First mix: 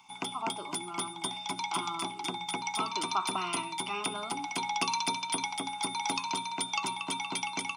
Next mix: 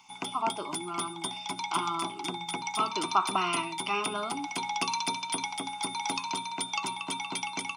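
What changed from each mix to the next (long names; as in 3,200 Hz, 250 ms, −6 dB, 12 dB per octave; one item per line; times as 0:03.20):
speech +6.0 dB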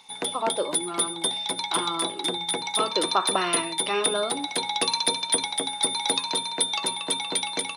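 master: remove phaser with its sweep stopped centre 2,600 Hz, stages 8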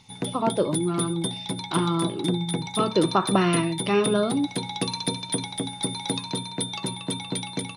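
background −6.0 dB
master: remove high-pass filter 530 Hz 12 dB per octave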